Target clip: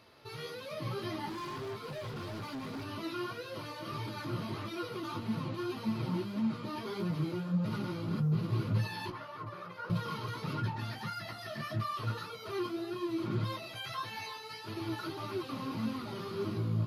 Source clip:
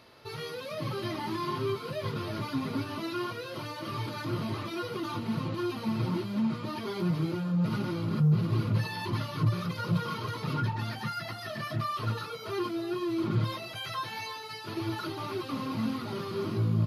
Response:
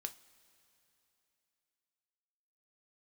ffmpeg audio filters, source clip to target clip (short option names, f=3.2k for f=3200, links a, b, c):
-filter_complex "[0:a]asettb=1/sr,asplit=3[a][b][c];[a]atrim=end=9.104[d];[b]atrim=start=9.1:end=9.9,asetpts=PTS-STARTPTS,afade=t=in:d=0.004:c=qsin,afade=t=out:st=0.796:d=0.004:c=qsin,acrossover=split=410 2100:gain=0.141 1 0.2[e][f][g];[e][f][g]amix=inputs=3:normalize=0[h];[c]atrim=start=9.896[i];[d][h]acrossfade=d=0.004:c1=hsin:c2=qsin[j];[j][i]acrossfade=d=0.004:c1=qsin:c2=hsin,flanger=delay=9.4:depth=7.2:regen=46:speed=1.7:shape=sinusoidal,asettb=1/sr,asplit=3[k][l][m];[k]atrim=end=1.294[n];[l]atrim=start=1.29:end=2.84,asetpts=PTS-STARTPTS,afade=t=in:d=0.004:c=qsin,afade=t=out:st=1.546:d=0.004:c=qsin,asoftclip=type=hard:threshold=-37.5dB[o];[m]atrim=start=2.836[p];[n][o]acrossfade=d=0.004:c1=hsin:c2=qsin[q];[q][p]acrossfade=d=0.004:c1=qsin:c2=hsin"